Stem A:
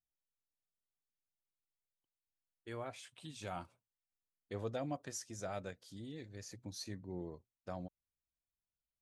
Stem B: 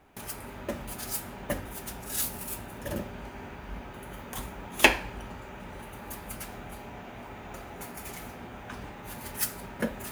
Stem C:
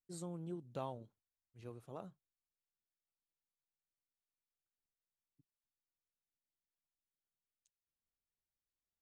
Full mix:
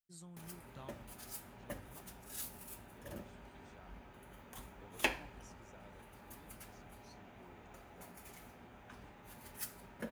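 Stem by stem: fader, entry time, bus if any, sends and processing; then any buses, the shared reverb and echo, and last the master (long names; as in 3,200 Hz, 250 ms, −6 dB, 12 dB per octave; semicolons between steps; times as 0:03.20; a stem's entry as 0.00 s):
−18.0 dB, 0.30 s, no send, no processing
−14.0 dB, 0.20 s, no send, no processing
−3.5 dB, 0.00 s, no send, parametric band 470 Hz −13.5 dB 1.8 octaves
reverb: not used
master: no processing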